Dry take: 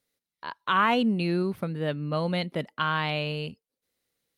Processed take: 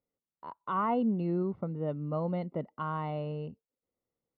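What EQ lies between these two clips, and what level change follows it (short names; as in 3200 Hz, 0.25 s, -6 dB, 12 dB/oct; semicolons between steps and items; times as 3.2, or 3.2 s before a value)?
polynomial smoothing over 65 samples; air absorption 64 m; -4.0 dB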